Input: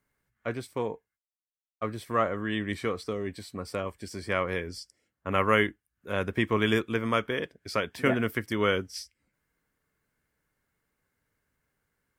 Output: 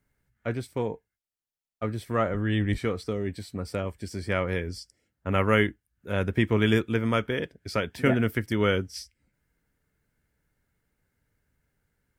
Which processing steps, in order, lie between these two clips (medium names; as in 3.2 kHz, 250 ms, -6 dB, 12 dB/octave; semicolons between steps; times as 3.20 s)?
2.30–2.78 s: octave divider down 1 oct, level -5 dB; bass shelf 190 Hz +9.5 dB; band-stop 1.1 kHz, Q 7.7